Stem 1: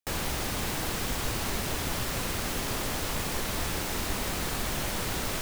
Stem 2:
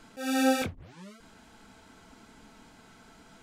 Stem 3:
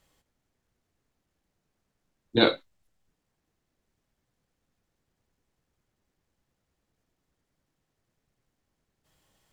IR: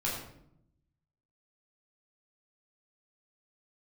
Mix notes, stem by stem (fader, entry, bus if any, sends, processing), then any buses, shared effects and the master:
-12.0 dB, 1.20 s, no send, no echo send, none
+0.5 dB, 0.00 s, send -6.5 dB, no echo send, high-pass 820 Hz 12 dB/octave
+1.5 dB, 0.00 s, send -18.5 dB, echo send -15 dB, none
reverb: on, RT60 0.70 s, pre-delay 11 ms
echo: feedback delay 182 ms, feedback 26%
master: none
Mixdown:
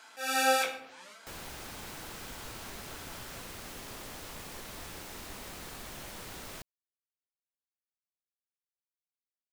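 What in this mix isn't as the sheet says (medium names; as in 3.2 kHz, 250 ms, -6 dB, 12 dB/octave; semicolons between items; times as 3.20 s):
stem 3: muted; master: extra bass shelf 210 Hz -4.5 dB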